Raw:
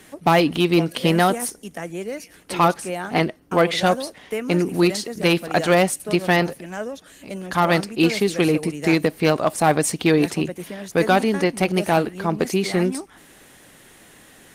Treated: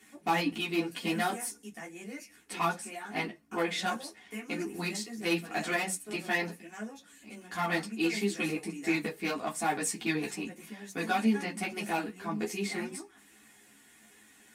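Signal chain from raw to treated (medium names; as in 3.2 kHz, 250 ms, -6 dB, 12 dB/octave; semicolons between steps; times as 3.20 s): reverberation, pre-delay 3 ms, DRR 1.5 dB; three-phase chorus; trim -8.5 dB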